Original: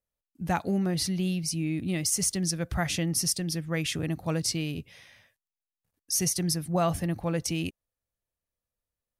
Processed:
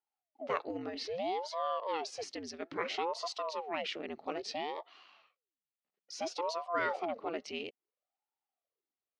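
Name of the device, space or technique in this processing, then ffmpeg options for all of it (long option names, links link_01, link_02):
voice changer toy: -af "aeval=exprs='val(0)*sin(2*PI*470*n/s+470*0.85/0.6*sin(2*PI*0.6*n/s))':channel_layout=same,highpass=550,equalizer=frequency=610:width_type=q:width=4:gain=-3,equalizer=frequency=960:width_type=q:width=4:gain=-7,equalizer=frequency=1600:width_type=q:width=4:gain=-9,equalizer=frequency=2400:width_type=q:width=4:gain=-4,equalizer=frequency=3500:width_type=q:width=4:gain=-6,lowpass=frequency=3800:width=0.5412,lowpass=frequency=3800:width=1.3066,volume=2.5dB"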